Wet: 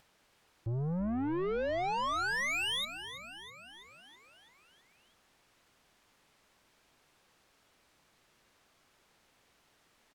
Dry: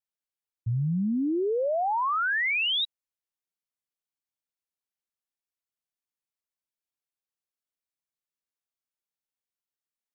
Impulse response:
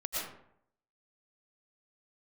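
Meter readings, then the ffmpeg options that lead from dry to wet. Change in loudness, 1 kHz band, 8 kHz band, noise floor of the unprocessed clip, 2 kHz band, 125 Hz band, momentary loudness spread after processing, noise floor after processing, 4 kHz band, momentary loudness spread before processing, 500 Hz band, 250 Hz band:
-7.5 dB, -6.5 dB, no reading, under -85 dBFS, -7.0 dB, -6.5 dB, 18 LU, -70 dBFS, -7.0 dB, 8 LU, -6.5 dB, -7.0 dB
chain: -filter_complex "[0:a]aemphasis=mode=reproduction:type=75fm,acompressor=mode=upward:threshold=0.00501:ratio=2.5,aeval=exprs='(tanh(44.7*val(0)+0.1)-tanh(0.1))/44.7':c=same,asplit=8[s0][s1][s2][s3][s4][s5][s6][s7];[s1]adelay=327,afreqshift=-60,volume=0.251[s8];[s2]adelay=654,afreqshift=-120,volume=0.151[s9];[s3]adelay=981,afreqshift=-180,volume=0.0902[s10];[s4]adelay=1308,afreqshift=-240,volume=0.0543[s11];[s5]adelay=1635,afreqshift=-300,volume=0.0327[s12];[s6]adelay=1962,afreqshift=-360,volume=0.0195[s13];[s7]adelay=2289,afreqshift=-420,volume=0.0117[s14];[s0][s8][s9][s10][s11][s12][s13][s14]amix=inputs=8:normalize=0,volume=1.12"

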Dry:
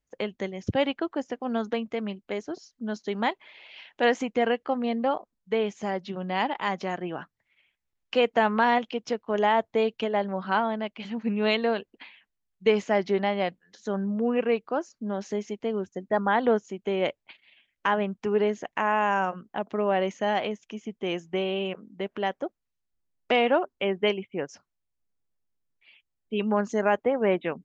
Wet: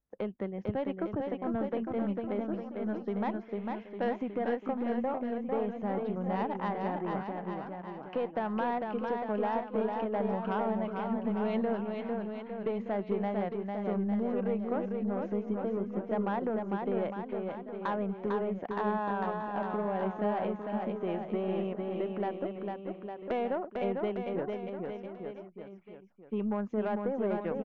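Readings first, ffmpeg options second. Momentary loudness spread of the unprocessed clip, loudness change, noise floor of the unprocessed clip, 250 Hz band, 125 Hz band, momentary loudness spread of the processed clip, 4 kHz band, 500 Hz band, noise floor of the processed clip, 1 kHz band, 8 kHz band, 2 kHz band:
11 LU, -6.5 dB, -82 dBFS, -2.5 dB, -1.0 dB, 7 LU, -18.5 dB, -6.0 dB, -48 dBFS, -7.0 dB, no reading, -12.5 dB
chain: -af "lowpass=1300,equalizer=f=200:t=o:w=0.25:g=4,acompressor=threshold=0.0562:ratio=6,aeval=exprs='(tanh(11.2*val(0)+0.2)-tanh(0.2))/11.2':c=same,aecho=1:1:450|855|1220|1548|1843:0.631|0.398|0.251|0.158|0.1,volume=0.75"

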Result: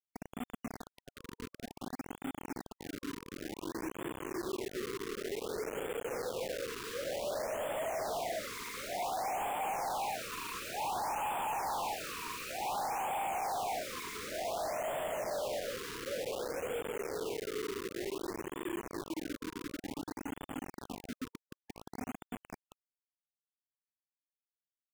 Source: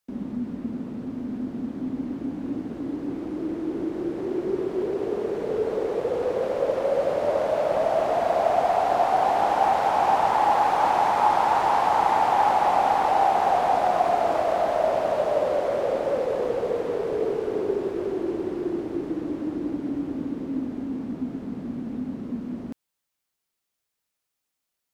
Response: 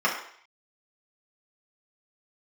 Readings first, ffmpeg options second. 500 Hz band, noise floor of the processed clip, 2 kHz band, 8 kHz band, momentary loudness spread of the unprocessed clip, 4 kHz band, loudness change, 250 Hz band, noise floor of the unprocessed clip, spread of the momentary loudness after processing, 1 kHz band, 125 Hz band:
-14.5 dB, under -85 dBFS, -8.0 dB, no reading, 11 LU, -3.5 dB, -14.0 dB, -14.5 dB, -82 dBFS, 11 LU, -16.0 dB, -12.0 dB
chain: -af "afwtdn=0.0447,tiltshelf=f=1400:g=-5.5,flanger=delay=2.2:depth=4.9:regen=78:speed=0.37:shape=triangular,aresample=16000,asoftclip=type=tanh:threshold=0.0398,aresample=44100,acrusher=bits=5:mix=0:aa=0.000001,afftfilt=real='re*(1-between(b*sr/1024,660*pow(5100/660,0.5+0.5*sin(2*PI*0.55*pts/sr))/1.41,660*pow(5100/660,0.5+0.5*sin(2*PI*0.55*pts/sr))*1.41))':imag='im*(1-between(b*sr/1024,660*pow(5100/660,0.5+0.5*sin(2*PI*0.55*pts/sr))/1.41,660*pow(5100/660,0.5+0.5*sin(2*PI*0.55*pts/sr))*1.41))':win_size=1024:overlap=0.75,volume=0.668"

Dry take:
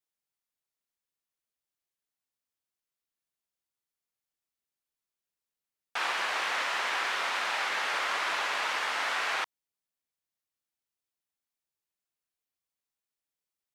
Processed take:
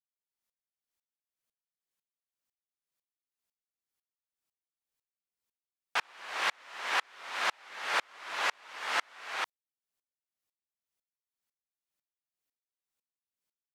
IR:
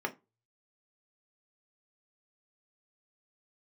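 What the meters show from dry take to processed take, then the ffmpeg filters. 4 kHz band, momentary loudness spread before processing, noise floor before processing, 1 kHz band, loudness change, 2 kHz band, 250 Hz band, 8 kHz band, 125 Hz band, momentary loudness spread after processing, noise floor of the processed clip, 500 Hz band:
-4.0 dB, 3 LU, under -85 dBFS, -4.0 dB, -4.0 dB, -4.0 dB, -4.5 dB, -4.0 dB, no reading, 8 LU, under -85 dBFS, -4.0 dB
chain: -af "aeval=exprs='val(0)*pow(10,-39*if(lt(mod(-2*n/s,1),2*abs(-2)/1000),1-mod(-2*n/s,1)/(2*abs(-2)/1000),(mod(-2*n/s,1)-2*abs(-2)/1000)/(1-2*abs(-2)/1000))/20)':c=same,volume=1.88"

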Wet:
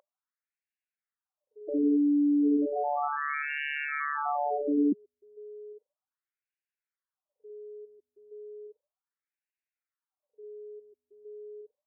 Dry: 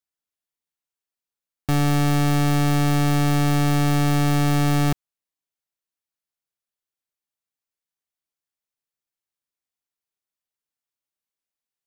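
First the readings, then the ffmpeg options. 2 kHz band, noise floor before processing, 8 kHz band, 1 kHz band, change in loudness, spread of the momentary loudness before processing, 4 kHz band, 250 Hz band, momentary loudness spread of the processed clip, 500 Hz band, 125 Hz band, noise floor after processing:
-4.0 dB, under -85 dBFS, under -40 dB, -5.0 dB, -7.5 dB, 4 LU, -19.5 dB, -4.5 dB, 23 LU, -3.0 dB, under -40 dB, under -85 dBFS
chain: -af "aeval=exprs='val(0)+0.00708*sin(2*PI*420*n/s)':c=same,afftfilt=real='re*between(b*sr/1024,270*pow(2100/270,0.5+0.5*sin(2*PI*0.34*pts/sr))/1.41,270*pow(2100/270,0.5+0.5*sin(2*PI*0.34*pts/sr))*1.41)':imag='im*between(b*sr/1024,270*pow(2100/270,0.5+0.5*sin(2*PI*0.34*pts/sr))/1.41,270*pow(2100/270,0.5+0.5*sin(2*PI*0.34*pts/sr))*1.41)':win_size=1024:overlap=0.75,volume=1.26"

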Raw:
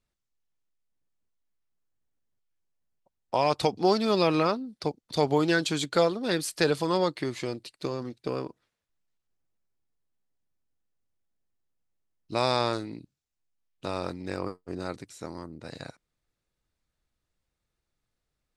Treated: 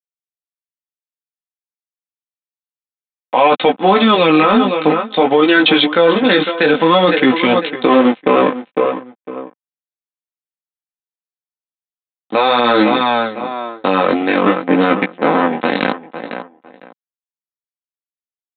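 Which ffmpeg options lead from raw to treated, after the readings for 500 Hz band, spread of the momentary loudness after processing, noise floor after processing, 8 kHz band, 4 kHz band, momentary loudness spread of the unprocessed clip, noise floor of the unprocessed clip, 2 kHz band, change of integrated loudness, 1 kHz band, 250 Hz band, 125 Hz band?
+14.5 dB, 13 LU, under -85 dBFS, under -25 dB, +15.5 dB, 17 LU, -84 dBFS, +18.5 dB, +14.5 dB, +17.0 dB, +16.5 dB, +7.5 dB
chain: -filter_complex "[0:a]aeval=exprs='sgn(val(0))*max(abs(val(0))-0.0106,0)':c=same,aresample=8000,aresample=44100,lowshelf=f=230:g=-10,asplit=2[s0][s1];[s1]adelay=504,lowpass=f=2900:p=1,volume=0.141,asplit=2[s2][s3];[s3]adelay=504,lowpass=f=2900:p=1,volume=0.21[s4];[s2][s4]amix=inputs=2:normalize=0[s5];[s0][s5]amix=inputs=2:normalize=0,dynaudnorm=f=430:g=9:m=6.31,highpass=f=160:w=0.5412,highpass=f=160:w=1.3066,areverse,acompressor=threshold=0.0355:ratio=4,areverse,flanger=delay=15:depth=5.7:speed=0.54,aecho=1:1:3.9:0.49,adynamicequalizer=threshold=0.00501:dfrequency=680:dqfactor=0.74:tfrequency=680:tqfactor=0.74:attack=5:release=100:ratio=0.375:range=3:mode=cutabove:tftype=bell,alimiter=level_in=25.1:limit=0.891:release=50:level=0:latency=1,volume=0.891"

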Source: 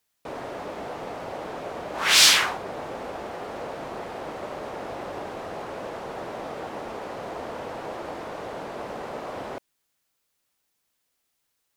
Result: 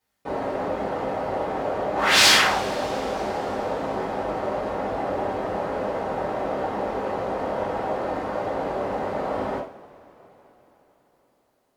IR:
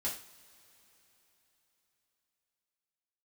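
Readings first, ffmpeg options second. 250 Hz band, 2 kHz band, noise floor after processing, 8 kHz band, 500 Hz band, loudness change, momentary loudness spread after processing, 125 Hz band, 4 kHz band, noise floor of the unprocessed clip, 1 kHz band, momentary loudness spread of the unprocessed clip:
+8.0 dB, +3.0 dB, -67 dBFS, -2.5 dB, +8.0 dB, +2.5 dB, 10 LU, +7.5 dB, 0.0 dB, -76 dBFS, +7.0 dB, 15 LU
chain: -filter_complex "[0:a]highshelf=f=2500:g=-11[s0];[1:a]atrim=start_sample=2205,asetrate=41454,aresample=44100[s1];[s0][s1]afir=irnorm=-1:irlink=0,volume=1.78"

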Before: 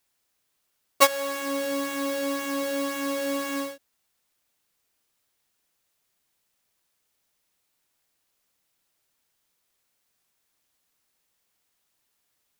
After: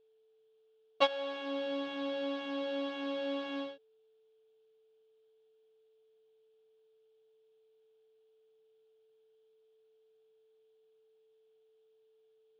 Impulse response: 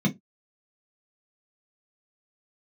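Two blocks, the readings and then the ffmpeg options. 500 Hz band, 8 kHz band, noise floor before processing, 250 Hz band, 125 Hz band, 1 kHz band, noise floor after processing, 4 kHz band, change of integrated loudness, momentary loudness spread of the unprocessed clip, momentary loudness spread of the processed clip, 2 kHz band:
-7.0 dB, under -30 dB, -75 dBFS, -8.0 dB, no reading, -10.5 dB, -69 dBFS, -7.0 dB, -9.5 dB, 8 LU, 9 LU, -11.0 dB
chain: -af "highpass=110,equalizer=f=140:t=q:w=4:g=3,equalizer=f=750:t=q:w=4:g=8,equalizer=f=1100:t=q:w=4:g=-5,equalizer=f=2000:t=q:w=4:g=-10,equalizer=f=3300:t=q:w=4:g=8,lowpass=f=3600:w=0.5412,lowpass=f=3600:w=1.3066,aeval=exprs='val(0)+0.00126*sin(2*PI*440*n/s)':c=same,volume=0.398"

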